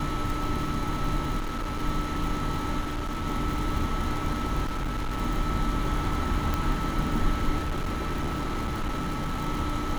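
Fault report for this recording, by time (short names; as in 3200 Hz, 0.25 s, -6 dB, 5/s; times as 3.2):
crackle 100/s -31 dBFS
1.38–1.83 clipped -27 dBFS
2.8–3.27 clipped -27 dBFS
4.64–5.19 clipped -26 dBFS
6.54 pop
7.6–9.39 clipped -25 dBFS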